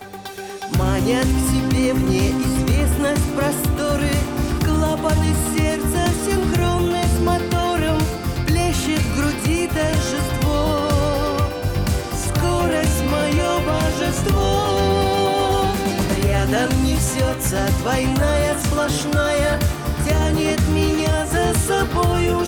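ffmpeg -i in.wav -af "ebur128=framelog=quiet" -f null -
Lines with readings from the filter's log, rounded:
Integrated loudness:
  I:         -19.2 LUFS
  Threshold: -29.3 LUFS
Loudness range:
  LRA:         1.2 LU
  Threshold: -39.3 LUFS
  LRA low:   -19.9 LUFS
  LRA high:  -18.7 LUFS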